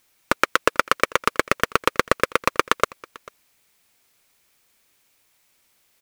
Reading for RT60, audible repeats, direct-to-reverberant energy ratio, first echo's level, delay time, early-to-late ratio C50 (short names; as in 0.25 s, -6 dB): none, 1, none, -23.0 dB, 0.443 s, none